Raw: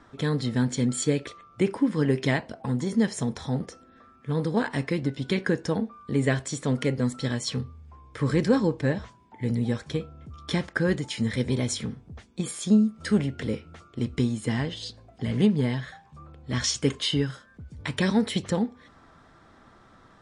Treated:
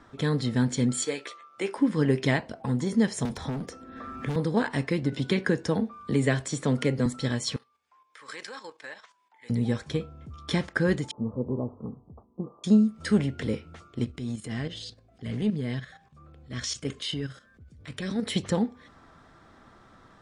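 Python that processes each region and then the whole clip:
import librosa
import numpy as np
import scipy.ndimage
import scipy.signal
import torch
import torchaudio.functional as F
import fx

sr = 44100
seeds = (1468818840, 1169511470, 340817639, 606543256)

y = fx.chain(x, sr, fx.highpass(hz=510.0, slope=12),
    fx.doubler(ms=15.0, db=-7.5), at=(1.05, 1.78))
y = fx.chain(y, sr, fx.peak_eq(hz=270.0, db=5.0, octaves=0.21),
    fx.overload_stage(gain_db=28.0),
    fx.band_squash(depth_pct=100), at=(3.25, 4.36))
y = fx.chain(y, sr, fx.highpass(hz=63.0, slope=12),
    fx.band_squash(depth_pct=40), at=(5.12, 7.06))
y = fx.chain(y, sr, fx.highpass(hz=1100.0, slope=12),
    fx.level_steps(step_db=10), at=(7.56, 9.5))
y = fx.chain(y, sr, fx.steep_lowpass(hz=1200.0, slope=96),
    fx.low_shelf(hz=200.0, db=-8.5), at=(11.11, 12.64))
y = fx.chain(y, sr, fx.peak_eq(hz=920.0, db=-13.5, octaves=0.23),
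    fx.level_steps(step_db=10),
    fx.transient(attack_db=-8, sustain_db=0), at=(14.04, 18.28))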